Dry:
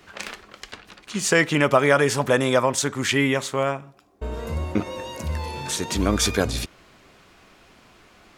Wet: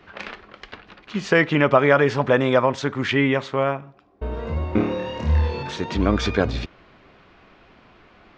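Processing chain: Gaussian low-pass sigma 2.2 samples; 4.70–5.63 s: flutter echo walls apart 4.6 m, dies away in 0.69 s; trim +2 dB

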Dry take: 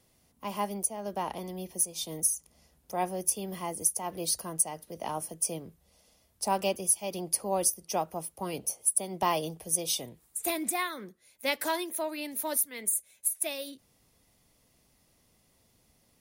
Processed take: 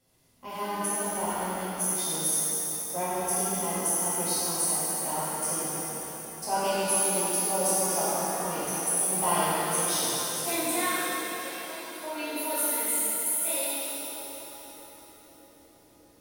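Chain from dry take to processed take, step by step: 10.96–12.04 s: compression 2:1, threshold -54 dBFS, peak gain reduction 16 dB; on a send: band-passed feedback delay 613 ms, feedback 78%, band-pass 330 Hz, level -16.5 dB; on the sum: pitch-shifted reverb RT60 3.4 s, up +7 st, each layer -8 dB, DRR -11 dB; trim -7.5 dB

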